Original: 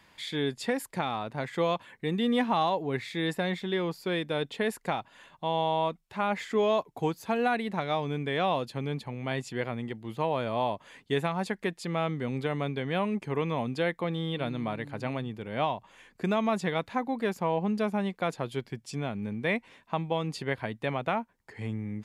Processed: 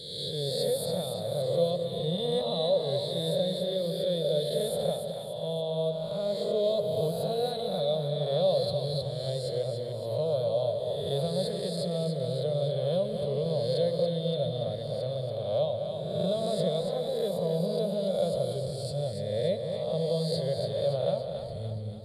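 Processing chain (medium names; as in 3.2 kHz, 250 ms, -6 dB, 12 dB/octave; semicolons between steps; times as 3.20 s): reverse spectral sustain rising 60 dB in 1.38 s; FFT filter 170 Hz 0 dB, 270 Hz -23 dB, 580 Hz +7 dB, 840 Hz -22 dB, 2.5 kHz -27 dB, 4.1 kHz +9 dB, 6.1 kHz -22 dB, 9 kHz +2 dB, 13 kHz -3 dB; two-band feedback delay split 650 Hz, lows 212 ms, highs 284 ms, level -6 dB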